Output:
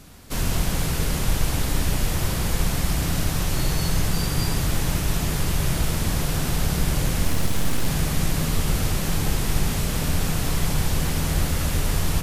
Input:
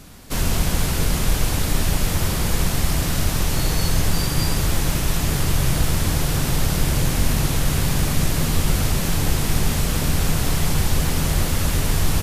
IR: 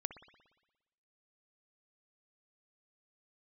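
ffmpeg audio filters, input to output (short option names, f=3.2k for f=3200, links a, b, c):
-filter_complex "[0:a]asettb=1/sr,asplit=3[a][b][c];[a]atrim=end=7.244[d];[b]atrim=start=7.24:end=7.87,asetpts=PTS-STARTPTS,afade=t=in:d=0.004:c=qsin,afade=t=out:st=0.626:d=0.004:c=qsin,aeval=exprs='abs(val(0))':c=same[e];[c]atrim=start=7.866[f];[d][e]acrossfade=d=0.004:c1=hsin:c2=qsin[g];[g][f]acrossfade=d=0.004:c1=qsin:c2=hsin[h];[1:a]atrim=start_sample=2205,asetrate=41013,aresample=44100[i];[h][i]afir=irnorm=-1:irlink=0,volume=-1.5dB"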